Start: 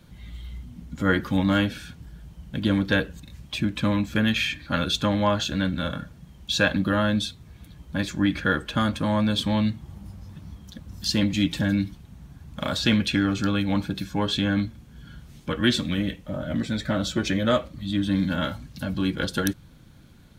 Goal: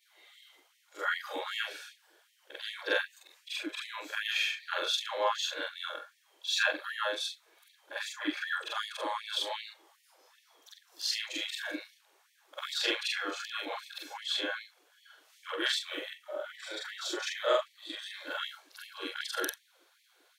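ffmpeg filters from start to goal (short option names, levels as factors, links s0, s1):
-af "afftfilt=real='re':imag='-im':win_size=4096:overlap=0.75,afftfilt=real='re*gte(b*sr/1024,300*pow(1800/300,0.5+0.5*sin(2*PI*2.6*pts/sr)))':imag='im*gte(b*sr/1024,300*pow(1800/300,0.5+0.5*sin(2*PI*2.6*pts/sr)))':win_size=1024:overlap=0.75"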